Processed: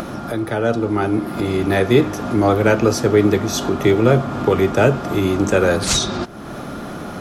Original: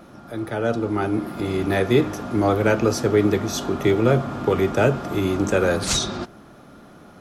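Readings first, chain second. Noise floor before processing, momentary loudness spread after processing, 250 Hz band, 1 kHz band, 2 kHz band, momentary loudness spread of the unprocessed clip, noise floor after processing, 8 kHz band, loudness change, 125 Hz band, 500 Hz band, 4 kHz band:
-46 dBFS, 13 LU, +4.0 dB, +4.5 dB, +4.0 dB, 7 LU, -31 dBFS, +4.0 dB, +4.0 dB, +4.0 dB, +4.0 dB, +4.0 dB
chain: upward compressor, threshold -21 dBFS; trim +4 dB

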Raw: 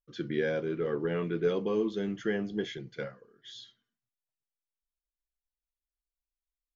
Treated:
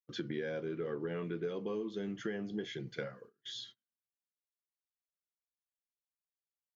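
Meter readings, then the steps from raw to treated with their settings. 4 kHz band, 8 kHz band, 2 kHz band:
-1.5 dB, no reading, -6.5 dB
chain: gate -56 dBFS, range -23 dB; high-pass 45 Hz; compression 5:1, threshold -39 dBFS, peak gain reduction 14.5 dB; trim +3 dB

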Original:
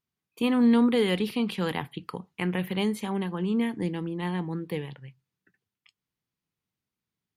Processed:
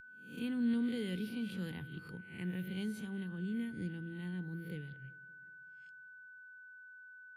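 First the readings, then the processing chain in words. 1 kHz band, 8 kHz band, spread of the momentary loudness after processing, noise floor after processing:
-25.0 dB, -12.0 dB, 18 LU, -55 dBFS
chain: reverse spectral sustain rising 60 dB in 0.48 s; high-pass 74 Hz; whistle 1.5 kHz -29 dBFS; amplifier tone stack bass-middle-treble 10-0-1; on a send: filtered feedback delay 190 ms, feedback 58%, low-pass 2.4 kHz, level -21.5 dB; on the sum: trim +5.5 dB

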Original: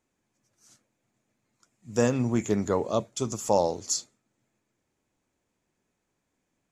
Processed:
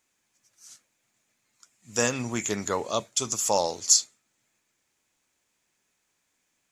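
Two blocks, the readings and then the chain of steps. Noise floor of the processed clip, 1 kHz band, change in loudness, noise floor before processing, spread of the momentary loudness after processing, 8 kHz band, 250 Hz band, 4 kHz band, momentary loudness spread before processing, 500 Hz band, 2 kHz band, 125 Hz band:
-76 dBFS, +1.0 dB, +2.0 dB, -80 dBFS, 9 LU, +9.5 dB, -6.0 dB, +9.0 dB, 6 LU, -3.0 dB, +6.0 dB, -6.5 dB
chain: tilt shelf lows -8.5 dB; trim +1.5 dB

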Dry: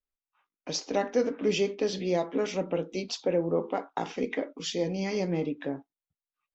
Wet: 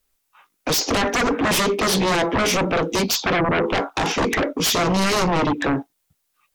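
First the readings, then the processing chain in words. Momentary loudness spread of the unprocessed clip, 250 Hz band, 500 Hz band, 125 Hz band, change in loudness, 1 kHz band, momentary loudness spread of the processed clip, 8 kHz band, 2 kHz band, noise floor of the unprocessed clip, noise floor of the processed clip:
7 LU, +9.5 dB, +6.0 dB, +11.0 dB, +10.0 dB, +15.0 dB, 4 LU, no reading, +17.5 dB, under -85 dBFS, -72 dBFS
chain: in parallel at +2 dB: peak limiter -23 dBFS, peak gain reduction 8 dB; on the sum: treble shelf 6.6 kHz +6.5 dB; sine folder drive 14 dB, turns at -10.5 dBFS; trim -5.5 dB

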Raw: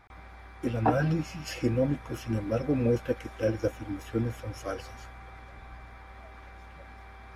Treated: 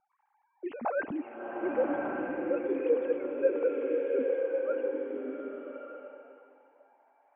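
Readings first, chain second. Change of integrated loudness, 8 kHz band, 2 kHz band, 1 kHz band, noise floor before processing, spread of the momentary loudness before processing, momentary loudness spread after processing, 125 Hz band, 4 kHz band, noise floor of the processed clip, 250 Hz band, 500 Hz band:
-1.5 dB, under -30 dB, -0.5 dB, -3.5 dB, -48 dBFS, 22 LU, 14 LU, under -25 dB, under -15 dB, -74 dBFS, -4.5 dB, +3.0 dB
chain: formants replaced by sine waves; level-controlled noise filter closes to 490 Hz, open at -24.5 dBFS; swelling reverb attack 1200 ms, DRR -1 dB; trim -4.5 dB

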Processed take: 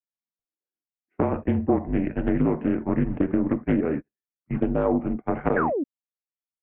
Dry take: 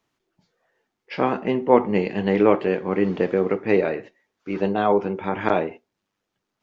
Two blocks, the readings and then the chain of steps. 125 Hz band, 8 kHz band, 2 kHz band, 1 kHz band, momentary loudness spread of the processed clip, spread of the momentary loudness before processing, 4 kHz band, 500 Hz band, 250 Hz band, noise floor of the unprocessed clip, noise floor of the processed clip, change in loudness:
+2.5 dB, no reading, -5.5 dB, -6.0 dB, 5 LU, 10 LU, under -15 dB, -6.5 dB, +1.0 dB, -81 dBFS, under -85 dBFS, -3.0 dB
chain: gate -27 dBFS, range -36 dB; peaking EQ 490 Hz +10 dB 2.5 oct; compression 16:1, threshold -11 dBFS, peak gain reduction 12 dB; mistuned SSB -160 Hz 180–2600 Hz; painted sound fall, 5.56–5.84 s, 250–1800 Hz -19 dBFS; loudspeaker Doppler distortion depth 0.35 ms; trim -6 dB

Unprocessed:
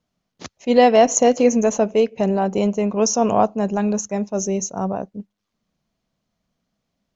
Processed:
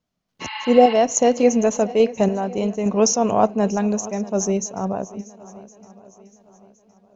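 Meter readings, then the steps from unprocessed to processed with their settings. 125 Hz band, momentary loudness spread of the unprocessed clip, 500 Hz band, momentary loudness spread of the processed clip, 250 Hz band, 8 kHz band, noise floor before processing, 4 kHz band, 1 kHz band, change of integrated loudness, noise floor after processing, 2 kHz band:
-0.5 dB, 12 LU, -0.5 dB, 14 LU, -0.5 dB, no reading, -78 dBFS, 0.0 dB, -1.0 dB, -1.0 dB, -76 dBFS, -1.5 dB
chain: random-step tremolo; spectral replace 0.44–0.91 s, 830–5200 Hz after; shuffle delay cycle 1064 ms, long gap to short 1.5:1, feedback 33%, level -19 dB; trim +2.5 dB

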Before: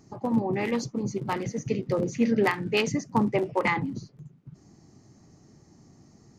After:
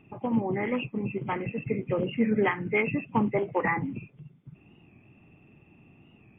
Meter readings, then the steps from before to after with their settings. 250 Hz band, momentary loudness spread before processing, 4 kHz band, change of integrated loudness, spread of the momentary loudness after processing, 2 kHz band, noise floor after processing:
-1.5 dB, 7 LU, -8.5 dB, -1.5 dB, 7 LU, 0.0 dB, -59 dBFS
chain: knee-point frequency compression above 2 kHz 4:1; warped record 45 rpm, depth 100 cents; trim -1.5 dB

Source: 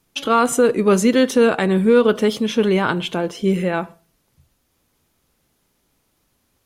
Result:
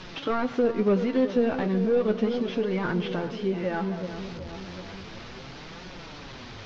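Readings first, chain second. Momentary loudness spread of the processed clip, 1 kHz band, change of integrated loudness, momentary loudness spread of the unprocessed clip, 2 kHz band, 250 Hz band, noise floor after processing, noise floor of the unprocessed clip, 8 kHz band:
18 LU, -11.0 dB, -9.0 dB, 8 LU, -10.5 dB, -7.5 dB, -42 dBFS, -68 dBFS, under -20 dB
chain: one-bit delta coder 32 kbps, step -30 dBFS; distance through air 150 m; feedback echo behind a low-pass 374 ms, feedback 58%, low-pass 1.3 kHz, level -11 dB; compression 2:1, threshold -22 dBFS, peak gain reduction 7 dB; flange 0.34 Hz, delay 5.3 ms, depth 7.4 ms, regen +38%

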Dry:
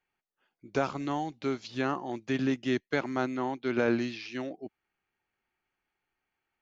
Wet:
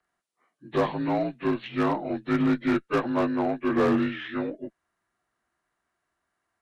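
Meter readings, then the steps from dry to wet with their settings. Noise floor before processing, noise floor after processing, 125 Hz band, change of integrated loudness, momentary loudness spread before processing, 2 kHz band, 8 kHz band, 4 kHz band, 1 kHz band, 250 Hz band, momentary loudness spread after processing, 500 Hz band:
under -85 dBFS, -81 dBFS, +5.0 dB, +5.0 dB, 9 LU, +2.0 dB, no reading, +1.0 dB, +5.0 dB, +6.0 dB, 8 LU, +5.0 dB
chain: frequency axis rescaled in octaves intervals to 85%; one-sided clip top -26.5 dBFS; Chebyshev shaper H 6 -26 dB, 8 -38 dB, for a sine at -22 dBFS; trim +7 dB

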